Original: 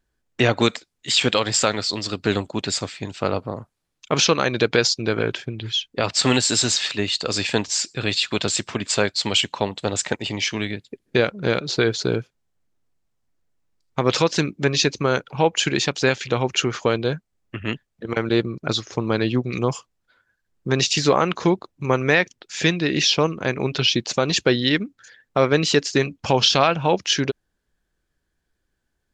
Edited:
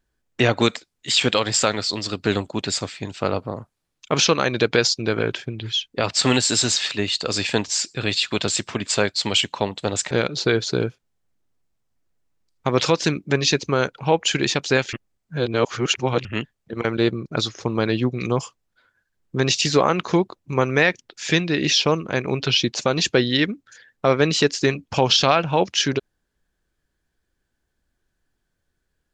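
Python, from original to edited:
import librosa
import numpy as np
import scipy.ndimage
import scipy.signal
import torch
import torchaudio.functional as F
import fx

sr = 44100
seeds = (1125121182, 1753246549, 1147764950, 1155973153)

y = fx.edit(x, sr, fx.cut(start_s=10.11, length_s=1.32),
    fx.reverse_span(start_s=16.25, length_s=1.32), tone=tone)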